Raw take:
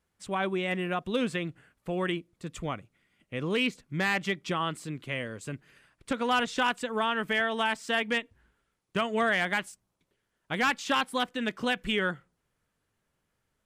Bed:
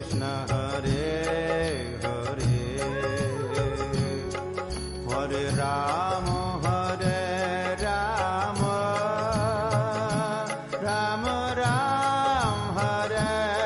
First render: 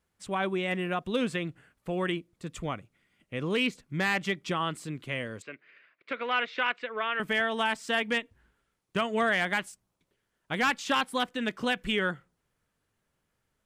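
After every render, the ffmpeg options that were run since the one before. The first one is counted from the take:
ffmpeg -i in.wav -filter_complex "[0:a]asettb=1/sr,asplit=3[link_01][link_02][link_03];[link_01]atrim=end=5.424[link_04];[link_02]atrim=start=5.42:end=7.2,asetpts=PTS-STARTPTS,afade=type=in:duration=0.004:curve=qsin,afade=type=out:start_time=1.776:duration=0.004:curve=qsin,highpass=470,equalizer=frequency=850:width_type=q:width=4:gain=-10,equalizer=frequency=2200:width_type=q:width=4:gain=8,equalizer=frequency=3300:width_type=q:width=4:gain=-4,lowpass=frequency=3700:width=0.5412,lowpass=frequency=3700:width=1.3066[link_05];[link_03]atrim=start=7.196[link_06];[link_04][link_05]acrossfade=duration=0.004:curve1=hsin:curve2=qsin[link_07];[link_07][link_06]acrossfade=duration=0.004:curve1=qsin:curve2=hsin" out.wav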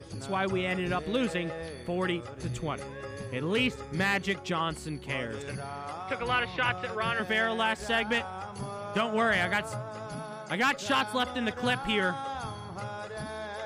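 ffmpeg -i in.wav -i bed.wav -filter_complex "[1:a]volume=-12dB[link_01];[0:a][link_01]amix=inputs=2:normalize=0" out.wav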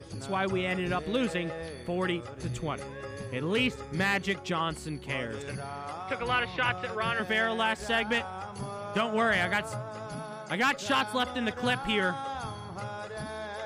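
ffmpeg -i in.wav -af anull out.wav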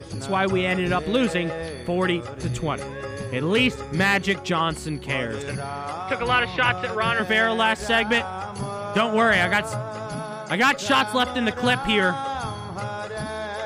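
ffmpeg -i in.wav -af "volume=7.5dB" out.wav

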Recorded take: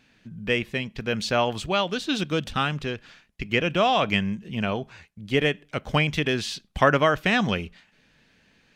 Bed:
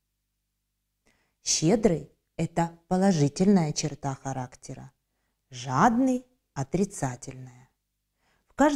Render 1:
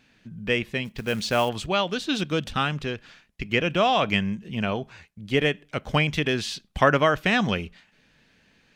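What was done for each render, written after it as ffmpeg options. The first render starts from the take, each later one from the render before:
ffmpeg -i in.wav -filter_complex "[0:a]asplit=3[link_01][link_02][link_03];[link_01]afade=type=out:start_time=0.84:duration=0.02[link_04];[link_02]acrusher=bits=5:mode=log:mix=0:aa=0.000001,afade=type=in:start_time=0.84:duration=0.02,afade=type=out:start_time=1.48:duration=0.02[link_05];[link_03]afade=type=in:start_time=1.48:duration=0.02[link_06];[link_04][link_05][link_06]amix=inputs=3:normalize=0" out.wav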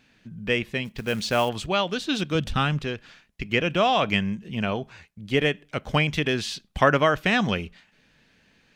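ffmpeg -i in.wav -filter_complex "[0:a]asettb=1/sr,asplit=3[link_01][link_02][link_03];[link_01]atrim=end=2.354[link_04];[link_02]atrim=start=2.35:end=2.79,asetpts=PTS-STARTPTS,afade=type=in:duration=0.004:curve=qsin,afade=type=out:start_time=0.436:duration=0.004:curve=qsin,lowshelf=frequency=130:gain=11[link_05];[link_03]atrim=start=2.786[link_06];[link_04][link_05]acrossfade=duration=0.004:curve1=hsin:curve2=qsin[link_07];[link_07][link_06]acrossfade=duration=0.004:curve1=qsin:curve2=hsin" out.wav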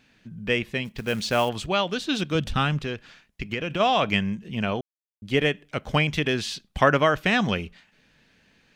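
ffmpeg -i in.wav -filter_complex "[0:a]asplit=3[link_01][link_02][link_03];[link_01]afade=type=out:start_time=2.83:duration=0.02[link_04];[link_02]acompressor=threshold=-23dB:ratio=6:attack=3.2:release=140:knee=1:detection=peak,afade=type=in:start_time=2.83:duration=0.02,afade=type=out:start_time=3.79:duration=0.02[link_05];[link_03]afade=type=in:start_time=3.79:duration=0.02[link_06];[link_04][link_05][link_06]amix=inputs=3:normalize=0,asplit=3[link_07][link_08][link_09];[link_07]atrim=end=4.81,asetpts=PTS-STARTPTS,afade=type=out:start_time=4.806:duration=0.004:curve=hsin[link_10];[link_08]atrim=start=4.81:end=5.22,asetpts=PTS-STARTPTS,volume=0[link_11];[link_09]atrim=start=5.22,asetpts=PTS-STARTPTS,afade=type=in:duration=0.004:curve=hsin[link_12];[link_10][link_11][link_12]concat=n=3:v=0:a=1" out.wav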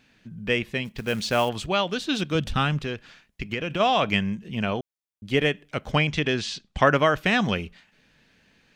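ffmpeg -i in.wav -filter_complex "[0:a]asettb=1/sr,asplit=3[link_01][link_02][link_03];[link_01]atrim=end=5.914[link_04];[link_02]atrim=start=5.91:end=6.86,asetpts=PTS-STARTPTS,afade=type=in:duration=0.004:curve=qsin,afade=type=out:start_time=0.946:duration=0.004:curve=qsin,lowpass=frequency=7900:width=0.5412,lowpass=frequency=7900:width=1.3066[link_05];[link_03]atrim=start=6.856[link_06];[link_04][link_05]acrossfade=duration=0.004:curve1=hsin:curve2=qsin[link_07];[link_07][link_06]acrossfade=duration=0.004:curve1=qsin:curve2=hsin" out.wav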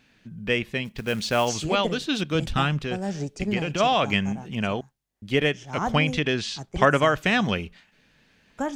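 ffmpeg -i in.wav -i bed.wav -filter_complex "[1:a]volume=-7.5dB[link_01];[0:a][link_01]amix=inputs=2:normalize=0" out.wav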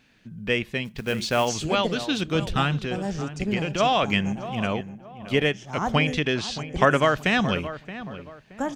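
ffmpeg -i in.wav -filter_complex "[0:a]asplit=2[link_01][link_02];[link_02]adelay=624,lowpass=frequency=1700:poles=1,volume=-12.5dB,asplit=2[link_03][link_04];[link_04]adelay=624,lowpass=frequency=1700:poles=1,volume=0.34,asplit=2[link_05][link_06];[link_06]adelay=624,lowpass=frequency=1700:poles=1,volume=0.34[link_07];[link_01][link_03][link_05][link_07]amix=inputs=4:normalize=0" out.wav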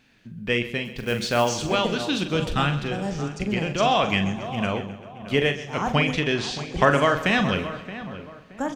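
ffmpeg -i in.wav -filter_complex "[0:a]asplit=2[link_01][link_02];[link_02]adelay=42,volume=-8.5dB[link_03];[link_01][link_03]amix=inputs=2:normalize=0,aecho=1:1:131|262|393|524|655|786:0.178|0.103|0.0598|0.0347|0.0201|0.0117" out.wav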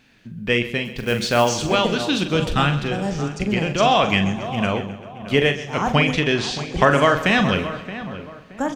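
ffmpeg -i in.wav -af "volume=4dB,alimiter=limit=-3dB:level=0:latency=1" out.wav

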